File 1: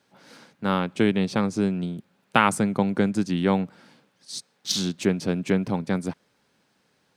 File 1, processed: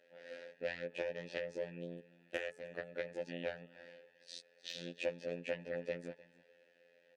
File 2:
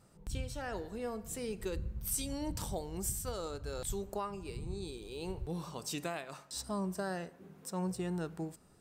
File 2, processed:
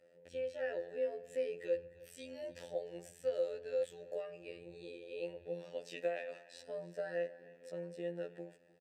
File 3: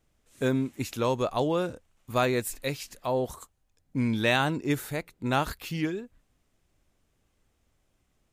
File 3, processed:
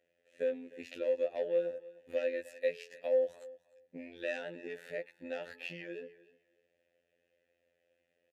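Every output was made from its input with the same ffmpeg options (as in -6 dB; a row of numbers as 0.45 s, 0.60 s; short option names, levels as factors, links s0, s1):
-filter_complex "[0:a]aeval=exprs='0.891*(cos(1*acos(clip(val(0)/0.891,-1,1)))-cos(1*PI/2))+0.224*(cos(7*acos(clip(val(0)/0.891,-1,1)))-cos(7*PI/2))':c=same,bandreject=f=424.6:t=h:w=4,bandreject=f=849.2:t=h:w=4,bandreject=f=1273.8:t=h:w=4,bandreject=f=1698.4:t=h:w=4,bandreject=f=2123:t=h:w=4,bandreject=f=2547.6:t=h:w=4,bandreject=f=2972.2:t=h:w=4,bandreject=f=3396.8:t=h:w=4,acompressor=threshold=0.0158:ratio=16,highpass=62,afftfilt=real='hypot(re,im)*cos(PI*b)':imag='0':win_size=2048:overlap=0.75,asplit=3[s0][s1][s2];[s0]bandpass=f=530:t=q:w=8,volume=1[s3];[s1]bandpass=f=1840:t=q:w=8,volume=0.501[s4];[s2]bandpass=f=2480:t=q:w=8,volume=0.355[s5];[s3][s4][s5]amix=inputs=3:normalize=0,asplit=2[s6][s7];[s7]aecho=0:1:303|606:0.1|0.017[s8];[s6][s8]amix=inputs=2:normalize=0,volume=6.31"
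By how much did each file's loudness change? -18.5 LU, -2.0 LU, -7.5 LU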